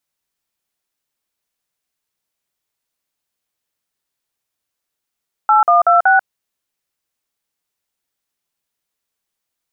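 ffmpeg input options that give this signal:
-f lavfi -i "aevalsrc='0.299*clip(min(mod(t,0.188),0.14-mod(t,0.188))/0.002,0,1)*(eq(floor(t/0.188),0)*(sin(2*PI*852*mod(t,0.188))+sin(2*PI*1336*mod(t,0.188)))+eq(floor(t/0.188),1)*(sin(2*PI*697*mod(t,0.188))+sin(2*PI*1209*mod(t,0.188)))+eq(floor(t/0.188),2)*(sin(2*PI*697*mod(t,0.188))+sin(2*PI*1336*mod(t,0.188)))+eq(floor(t/0.188),3)*(sin(2*PI*770*mod(t,0.188))+sin(2*PI*1477*mod(t,0.188))))':d=0.752:s=44100"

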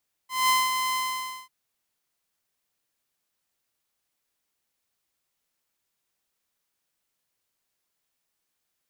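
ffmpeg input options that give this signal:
-f lavfi -i "aevalsrc='0.168*(2*mod(1030*t,1)-1)':d=1.193:s=44100,afade=t=in:d=0.201,afade=t=out:st=0.201:d=0.201:silence=0.473,afade=t=out:st=0.65:d=0.543"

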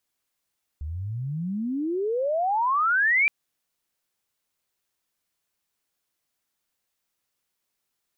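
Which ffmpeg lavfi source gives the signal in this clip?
-f lavfi -i "aevalsrc='pow(10,(-29.5+12.5*t/2.47)/20)*sin(2*PI*71*2.47/log(2400/71)*(exp(log(2400/71)*t/2.47)-1))':d=2.47:s=44100"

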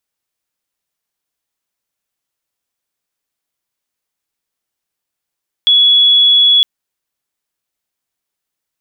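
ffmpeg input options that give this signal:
-f lavfi -i "sine=f=3380:d=0.96:r=44100,volume=12.56dB"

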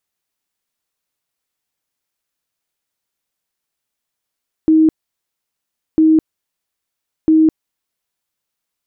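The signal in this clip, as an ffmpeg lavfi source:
-f lavfi -i "aevalsrc='0.447*sin(2*PI*316*mod(t,1.3))*lt(mod(t,1.3),66/316)':d=3.9:s=44100"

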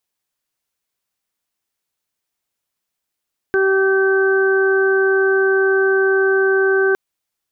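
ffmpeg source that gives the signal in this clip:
-f lavfi -i "aevalsrc='0.211*sin(2*PI*386*t)+0.0376*sin(2*PI*772*t)+0.0335*sin(2*PI*1158*t)+0.126*sin(2*PI*1544*t)':d=3.41:s=44100"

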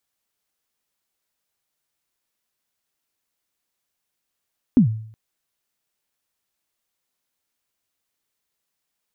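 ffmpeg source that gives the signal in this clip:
-f lavfi -i "aevalsrc='0.447*pow(10,-3*t/0.59)*sin(2*PI*(280*0.106/log(110/280)*(exp(log(110/280)*min(t,0.106)/0.106)-1)+110*max(t-0.106,0)))':d=0.37:s=44100"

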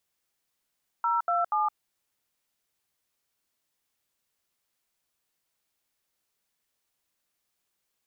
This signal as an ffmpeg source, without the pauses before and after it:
-f lavfi -i "aevalsrc='0.0531*clip(min(mod(t,0.24),0.166-mod(t,0.24))/0.002,0,1)*(eq(floor(t/0.24),0)*(sin(2*PI*941*mod(t,0.24))+sin(2*PI*1336*mod(t,0.24)))+eq(floor(t/0.24),1)*(sin(2*PI*697*mod(t,0.24))+sin(2*PI*1336*mod(t,0.24)))+eq(floor(t/0.24),2)*(sin(2*PI*852*mod(t,0.24))+sin(2*PI*1209*mod(t,0.24))))':d=0.72:s=44100"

